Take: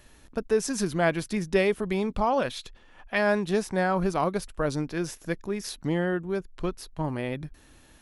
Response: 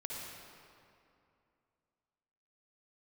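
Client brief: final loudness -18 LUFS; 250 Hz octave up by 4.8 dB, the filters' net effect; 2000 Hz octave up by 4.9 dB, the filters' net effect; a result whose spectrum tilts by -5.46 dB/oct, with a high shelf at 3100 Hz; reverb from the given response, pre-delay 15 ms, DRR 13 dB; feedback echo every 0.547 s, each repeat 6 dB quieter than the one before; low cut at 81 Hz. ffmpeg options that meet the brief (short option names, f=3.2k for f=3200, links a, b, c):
-filter_complex "[0:a]highpass=81,equalizer=f=250:t=o:g=7,equalizer=f=2k:t=o:g=7,highshelf=f=3.1k:g=-3,aecho=1:1:547|1094|1641|2188|2735|3282:0.501|0.251|0.125|0.0626|0.0313|0.0157,asplit=2[a][b];[1:a]atrim=start_sample=2205,adelay=15[c];[b][c]afir=irnorm=-1:irlink=0,volume=-13.5dB[d];[a][d]amix=inputs=2:normalize=0,volume=6dB"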